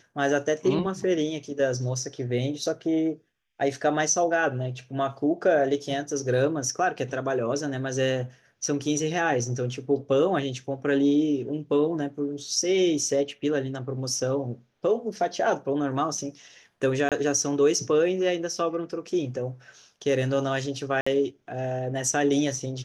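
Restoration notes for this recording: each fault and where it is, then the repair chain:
17.09–17.12 s: dropout 27 ms
21.01–21.07 s: dropout 55 ms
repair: interpolate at 17.09 s, 27 ms; interpolate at 21.01 s, 55 ms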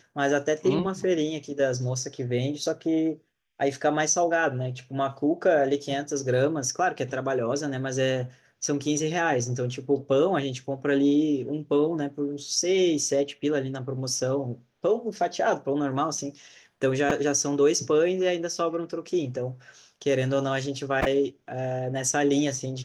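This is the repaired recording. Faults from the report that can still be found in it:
nothing left

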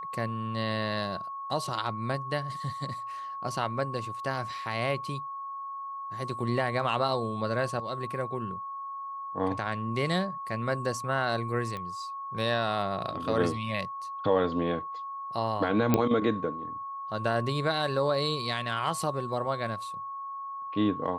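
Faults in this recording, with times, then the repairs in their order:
whine 1.1 kHz -35 dBFS
11.77 s: pop -24 dBFS
15.94 s: pop -9 dBFS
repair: de-click; band-stop 1.1 kHz, Q 30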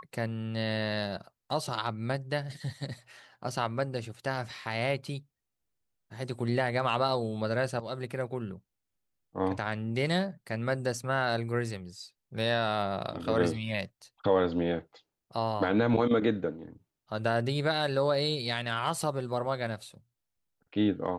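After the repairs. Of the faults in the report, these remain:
nothing left

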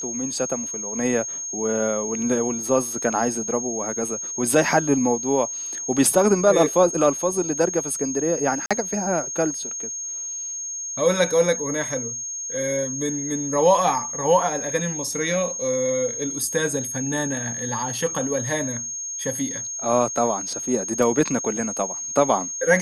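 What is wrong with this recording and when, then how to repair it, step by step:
whine 6.5 kHz -28 dBFS
8.66–8.71 s: dropout 46 ms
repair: band-stop 6.5 kHz, Q 30; interpolate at 8.66 s, 46 ms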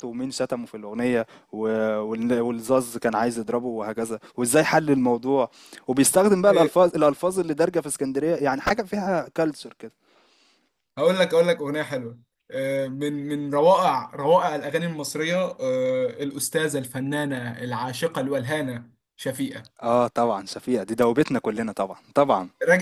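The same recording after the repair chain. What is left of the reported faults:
nothing left

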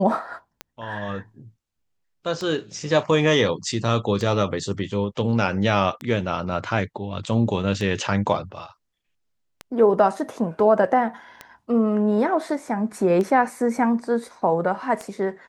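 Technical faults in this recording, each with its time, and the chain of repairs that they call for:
tick 33 1/3 rpm -16 dBFS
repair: de-click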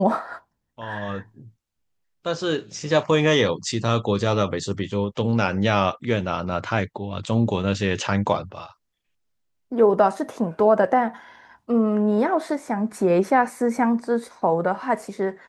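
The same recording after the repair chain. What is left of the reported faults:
nothing left

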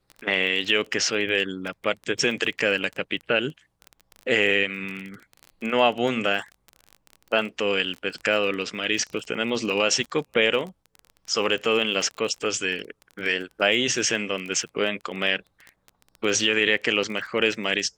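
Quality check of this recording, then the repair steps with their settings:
crackle 23 per s -30 dBFS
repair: de-click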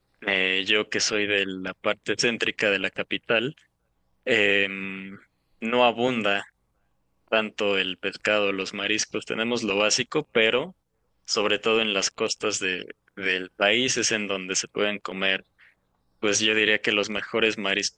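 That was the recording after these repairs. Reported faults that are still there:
nothing left

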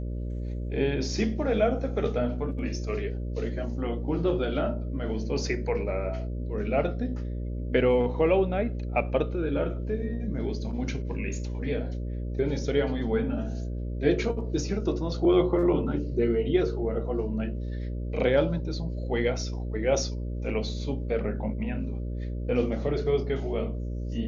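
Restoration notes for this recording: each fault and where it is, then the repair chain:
buzz 60 Hz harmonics 10 -32 dBFS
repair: de-hum 60 Hz, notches 10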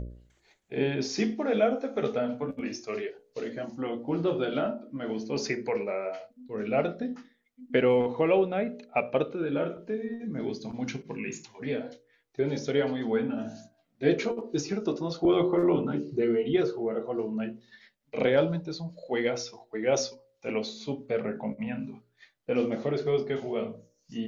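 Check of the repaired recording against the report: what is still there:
nothing left

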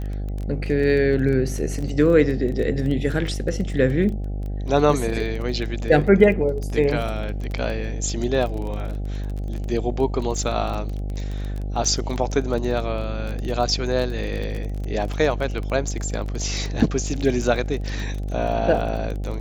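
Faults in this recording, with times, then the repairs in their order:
buzz 50 Hz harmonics 16 -27 dBFS
crackle 20 per s -27 dBFS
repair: de-click; de-hum 50 Hz, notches 16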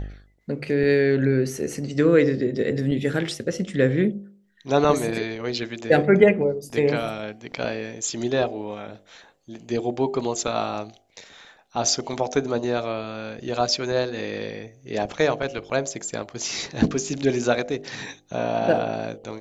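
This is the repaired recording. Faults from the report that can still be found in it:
nothing left

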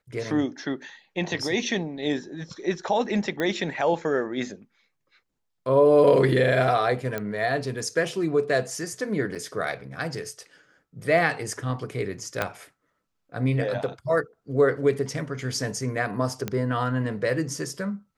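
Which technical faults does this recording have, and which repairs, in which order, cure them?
3.40 s: pop -15 dBFS
7.18 s: pop -15 dBFS
9.35–9.36 s: dropout 6.4 ms
12.42 s: pop -10 dBFS
16.48 s: pop -14 dBFS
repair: de-click; interpolate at 9.35 s, 6.4 ms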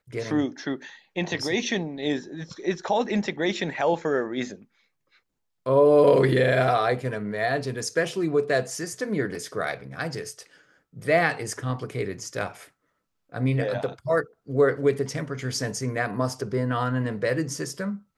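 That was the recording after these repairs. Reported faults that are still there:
12.42 s: pop

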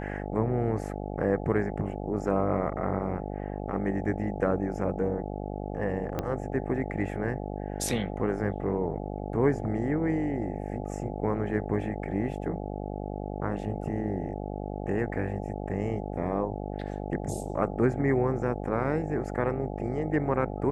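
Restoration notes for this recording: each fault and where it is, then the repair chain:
buzz 50 Hz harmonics 17 -35 dBFS
6.19 s: pop -16 dBFS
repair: de-click; de-hum 50 Hz, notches 17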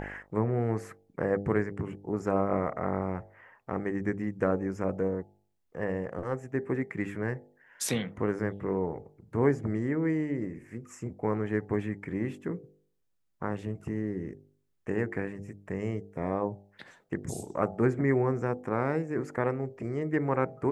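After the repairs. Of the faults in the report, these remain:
6.19 s: pop

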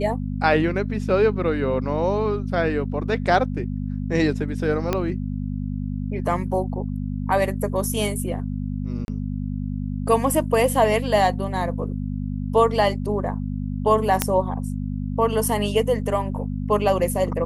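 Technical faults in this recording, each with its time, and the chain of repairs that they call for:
hum 50 Hz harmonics 5 -27 dBFS
4.93 s: pop -8 dBFS
9.05–9.08 s: dropout 31 ms
14.22 s: pop -2 dBFS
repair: de-click; de-hum 50 Hz, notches 5; interpolate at 9.05 s, 31 ms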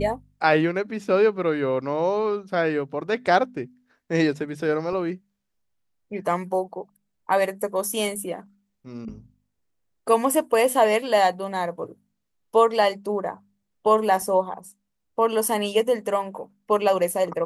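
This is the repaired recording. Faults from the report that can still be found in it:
4.93 s: pop

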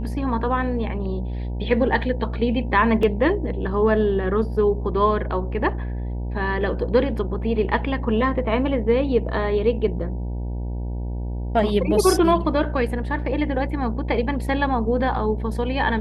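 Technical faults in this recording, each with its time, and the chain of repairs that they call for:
buzz 60 Hz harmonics 16 -27 dBFS
3.03 s: dropout 2.7 ms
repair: de-hum 60 Hz, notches 16; interpolate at 3.03 s, 2.7 ms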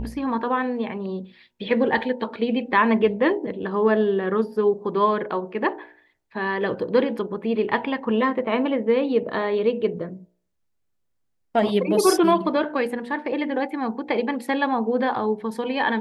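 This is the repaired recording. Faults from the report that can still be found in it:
nothing left

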